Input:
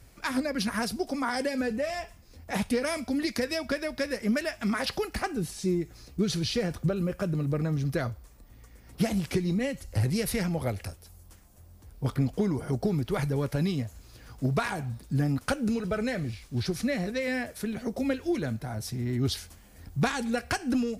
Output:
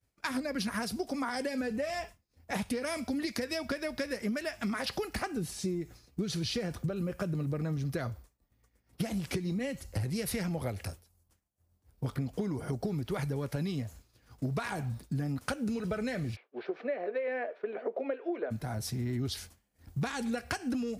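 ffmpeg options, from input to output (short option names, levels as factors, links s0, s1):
-filter_complex "[0:a]asplit=3[s0][s1][s2];[s0]afade=t=out:st=16.35:d=0.02[s3];[s1]highpass=f=360:w=0.5412,highpass=f=360:w=1.3066,equalizer=f=440:t=q:w=4:g=8,equalizer=f=640:t=q:w=4:g=7,equalizer=f=2000:t=q:w=4:g=-4,lowpass=f=2400:w=0.5412,lowpass=f=2400:w=1.3066,afade=t=in:st=16.35:d=0.02,afade=t=out:st=18.5:d=0.02[s4];[s2]afade=t=in:st=18.5:d=0.02[s5];[s3][s4][s5]amix=inputs=3:normalize=0,agate=range=0.0224:threshold=0.0112:ratio=3:detection=peak,highpass=52,acompressor=threshold=0.0316:ratio=6"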